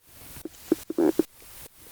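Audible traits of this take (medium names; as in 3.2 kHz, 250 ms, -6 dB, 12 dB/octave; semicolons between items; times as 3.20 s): a quantiser's noise floor 8-bit, dither triangular; tremolo saw up 2.4 Hz, depth 95%; Opus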